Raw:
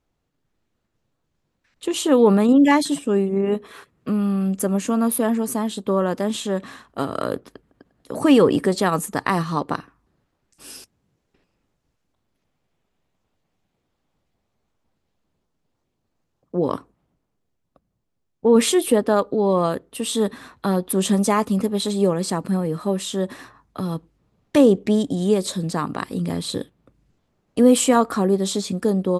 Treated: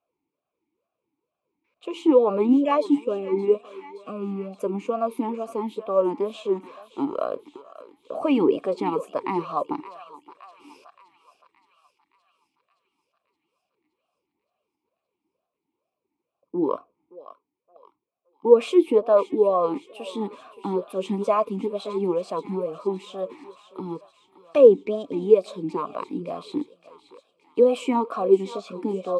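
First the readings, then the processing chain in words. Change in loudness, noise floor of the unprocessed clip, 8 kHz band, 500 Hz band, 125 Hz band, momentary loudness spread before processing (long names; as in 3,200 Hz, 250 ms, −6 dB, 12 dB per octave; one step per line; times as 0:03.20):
−3.0 dB, −75 dBFS, below −20 dB, 0.0 dB, −12.5 dB, 14 LU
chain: feedback echo with a high-pass in the loop 570 ms, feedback 65%, high-pass 960 Hz, level −13 dB
formant filter swept between two vowels a-u 2.2 Hz
level +7.5 dB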